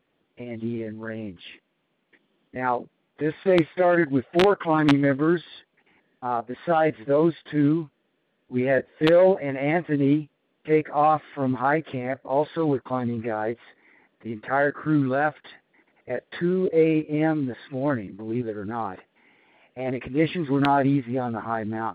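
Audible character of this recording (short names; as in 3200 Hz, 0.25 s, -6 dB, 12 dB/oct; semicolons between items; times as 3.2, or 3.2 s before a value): noise floor -72 dBFS; spectral tilt -4.0 dB/oct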